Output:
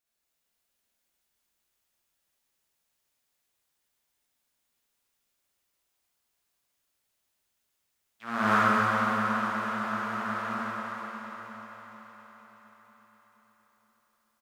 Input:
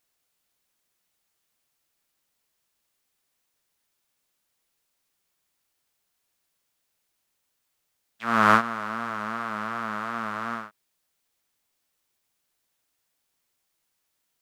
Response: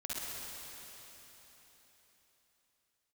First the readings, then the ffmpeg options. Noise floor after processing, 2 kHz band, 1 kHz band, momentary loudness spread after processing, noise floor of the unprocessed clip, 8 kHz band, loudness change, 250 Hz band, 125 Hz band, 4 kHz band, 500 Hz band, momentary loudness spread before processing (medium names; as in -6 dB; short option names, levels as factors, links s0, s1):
-79 dBFS, -1.5 dB, -2.0 dB, 20 LU, -77 dBFS, -1.5 dB, -2.5 dB, 0.0 dB, +1.0 dB, -2.0 dB, -1.5 dB, 15 LU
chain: -filter_complex "[0:a]aecho=1:1:469|938|1407|1876|2345|2814|3283:0.282|0.163|0.0948|0.055|0.0319|0.0185|0.0107[s0];[1:a]atrim=start_sample=2205[s1];[s0][s1]afir=irnorm=-1:irlink=0,volume=0.562"